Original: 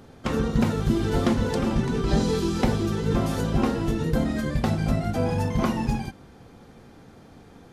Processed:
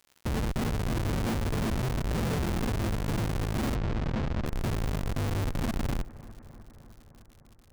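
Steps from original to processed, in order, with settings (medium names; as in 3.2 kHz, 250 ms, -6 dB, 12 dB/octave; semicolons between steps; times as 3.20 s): 5.05–5.73 s: spectral contrast enhancement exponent 2; peaking EQ 120 Hz +6.5 dB 0.22 oct; de-hum 58.82 Hz, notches 29; Schmitt trigger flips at -21.5 dBFS; crackle 120 per s -40 dBFS; 3.75–4.46 s: distance through air 150 m; bucket-brigade echo 304 ms, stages 4096, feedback 72%, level -19 dB; trim -3.5 dB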